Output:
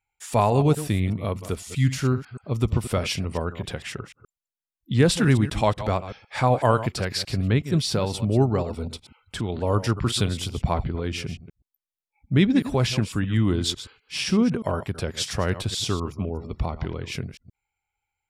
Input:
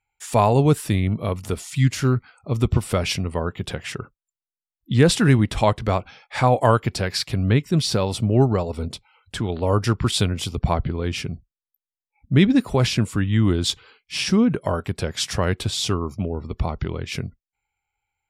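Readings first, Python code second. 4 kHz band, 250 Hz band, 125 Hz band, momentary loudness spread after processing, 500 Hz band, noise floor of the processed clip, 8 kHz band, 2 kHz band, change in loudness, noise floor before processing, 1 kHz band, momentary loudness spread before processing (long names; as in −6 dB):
−3.0 dB, −3.0 dB, −3.0 dB, 12 LU, −3.0 dB, below −85 dBFS, −3.0 dB, −3.0 dB, −3.0 dB, below −85 dBFS, −3.0 dB, 13 LU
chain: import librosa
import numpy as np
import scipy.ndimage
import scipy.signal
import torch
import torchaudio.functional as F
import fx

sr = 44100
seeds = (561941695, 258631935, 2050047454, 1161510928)

y = fx.reverse_delay(x, sr, ms=125, wet_db=-12.5)
y = F.gain(torch.from_numpy(y), -3.0).numpy()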